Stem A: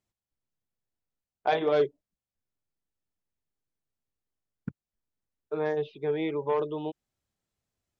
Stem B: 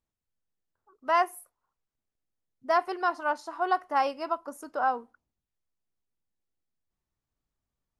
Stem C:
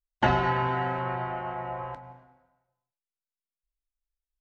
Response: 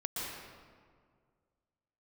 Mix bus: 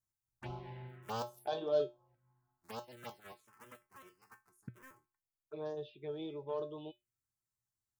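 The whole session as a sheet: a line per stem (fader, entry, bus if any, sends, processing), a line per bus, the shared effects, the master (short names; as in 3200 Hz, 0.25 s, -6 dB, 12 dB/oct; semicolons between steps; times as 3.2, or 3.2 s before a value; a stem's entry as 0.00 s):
-1.0 dB, 0.00 s, no send, dry
0.83 s 0 dB -> 1.58 s -9 dB -> 3.17 s -9 dB -> 3.95 s -19.5 dB, 0.00 s, no send, cycle switcher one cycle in 3, inverted
-10.5 dB, 0.20 s, no send, self-modulated delay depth 0.24 ms; bell 5100 Hz -10.5 dB 2.3 oct; auto duck -21 dB, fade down 0.60 s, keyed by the first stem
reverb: off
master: high shelf 3600 Hz +8.5 dB; resonator 120 Hz, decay 0.22 s, harmonics odd, mix 80%; envelope phaser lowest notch 490 Hz, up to 2100 Hz, full sweep at -37.5 dBFS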